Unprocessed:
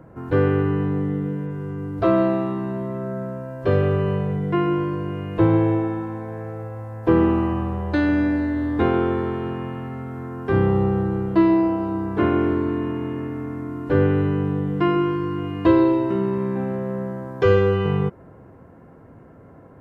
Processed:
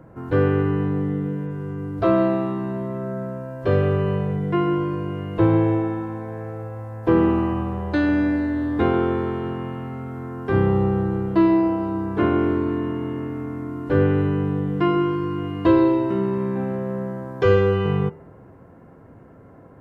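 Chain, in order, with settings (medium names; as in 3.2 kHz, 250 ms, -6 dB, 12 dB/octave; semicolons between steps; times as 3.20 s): de-hum 79.7 Hz, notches 37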